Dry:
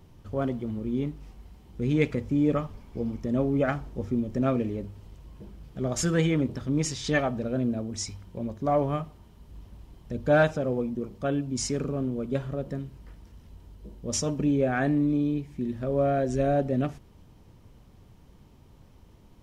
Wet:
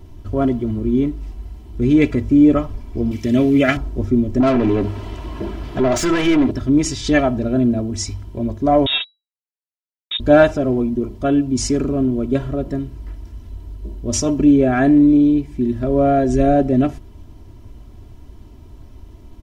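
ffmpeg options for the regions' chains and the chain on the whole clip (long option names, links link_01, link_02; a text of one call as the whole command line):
ffmpeg -i in.wav -filter_complex "[0:a]asettb=1/sr,asplit=3[link_01][link_02][link_03];[link_01]atrim=end=3.114[link_04];[link_02]atrim=start=3.11:end=3.77,asetpts=PTS-STARTPTS,afade=type=in:duration=0.004:curve=qsin,afade=type=out:start_time=0.656:duration=0.004:curve=qsin,highpass=frequency=73:width=0.5412,highpass=frequency=73:width=1.3066,highshelf=frequency=1600:width_type=q:width=1.5:gain=10.5[link_05];[link_03]atrim=start=3.766[link_06];[link_04][link_05]acrossfade=duration=0.004:curve1=hsin:curve2=qsin[link_07];[link_07][link_06]acrossfade=duration=0.004:curve1=qsin:curve2=hsin,asettb=1/sr,asplit=3[link_08][link_09][link_10];[link_08]atrim=end=4.404[link_11];[link_09]atrim=start=4.4:end=6.51,asetpts=PTS-STARTPTS,afade=type=in:duration=0.004:curve=qsin,afade=type=out:start_time=2.106:duration=0.004:curve=qsin,acompressor=threshold=-31dB:ratio=2:attack=3.2:release=140:knee=1:detection=peak,bass=frequency=250:gain=2,treble=frequency=4000:gain=-5,asplit=2[link_12][link_13];[link_13]highpass=frequency=720:poles=1,volume=25dB,asoftclip=type=tanh:threshold=-18.5dB[link_14];[link_12][link_14]amix=inputs=2:normalize=0,lowpass=frequency=3700:poles=1,volume=-6dB[link_15];[link_10]atrim=start=6.506[link_16];[link_11][link_15]acrossfade=duration=0.004:curve1=hsin:curve2=qsin[link_17];[link_17][link_16]acrossfade=duration=0.004:curve1=qsin:curve2=hsin,asettb=1/sr,asplit=3[link_18][link_19][link_20];[link_18]atrim=end=8.864[link_21];[link_19]atrim=start=8.86:end=10.2,asetpts=PTS-STARTPTS,afade=type=in:duration=0.004:curve=qsin,afade=type=out:start_time=1.336:duration=0.004:curve=qsin,acrusher=bits=4:mix=0:aa=0.5,lowpass=frequency=3300:width_type=q:width=0.5098,lowpass=frequency=3300:width_type=q:width=0.6013,lowpass=frequency=3300:width_type=q:width=0.9,lowpass=frequency=3300:width_type=q:width=2.563,afreqshift=-3900[link_22];[link_20]atrim=start=10.196[link_23];[link_21][link_22]acrossfade=duration=0.004:curve1=hsin:curve2=qsin[link_24];[link_24][link_23]acrossfade=duration=0.004:curve1=qsin:curve2=hsin,lowshelf=frequency=330:gain=7.5,aecho=1:1:3:0.72,volume=5.5dB" out.wav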